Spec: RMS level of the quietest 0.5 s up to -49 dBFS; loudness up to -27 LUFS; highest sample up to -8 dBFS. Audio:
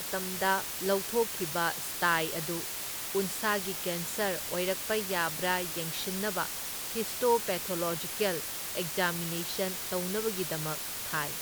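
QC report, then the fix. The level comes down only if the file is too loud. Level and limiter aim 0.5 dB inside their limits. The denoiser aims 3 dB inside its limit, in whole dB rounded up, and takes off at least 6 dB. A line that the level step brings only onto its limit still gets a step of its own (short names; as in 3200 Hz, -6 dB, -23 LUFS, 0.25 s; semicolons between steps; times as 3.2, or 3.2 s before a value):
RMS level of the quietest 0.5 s -37 dBFS: fail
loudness -31.0 LUFS: OK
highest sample -13.5 dBFS: OK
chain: denoiser 15 dB, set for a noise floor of -37 dBFS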